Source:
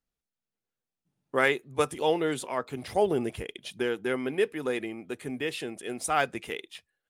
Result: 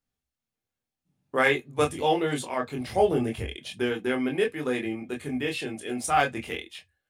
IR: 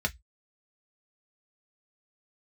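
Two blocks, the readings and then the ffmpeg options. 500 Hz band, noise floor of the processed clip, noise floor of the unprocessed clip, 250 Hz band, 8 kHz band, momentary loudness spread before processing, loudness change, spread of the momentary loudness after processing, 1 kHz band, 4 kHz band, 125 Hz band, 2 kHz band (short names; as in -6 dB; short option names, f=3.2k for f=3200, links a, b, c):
+1.5 dB, under -85 dBFS, under -85 dBFS, +4.0 dB, +1.0 dB, 12 LU, +2.5 dB, 11 LU, +4.0 dB, +2.5 dB, +5.5 dB, +2.5 dB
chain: -filter_complex "[0:a]asplit=2[a][b];[1:a]atrim=start_sample=2205,asetrate=52920,aresample=44100,adelay=22[c];[b][c]afir=irnorm=-1:irlink=0,volume=-6.5dB[d];[a][d]amix=inputs=2:normalize=0"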